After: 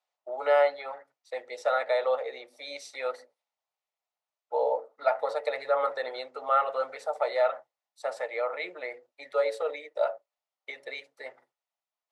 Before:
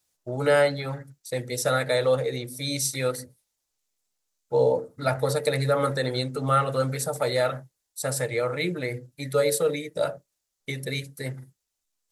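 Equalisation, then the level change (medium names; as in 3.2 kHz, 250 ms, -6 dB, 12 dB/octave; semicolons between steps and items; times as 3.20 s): ladder high-pass 580 Hz, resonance 45%; low-pass 2.7 kHz 12 dB/octave; band-stop 1.6 kHz, Q 8.9; +5.5 dB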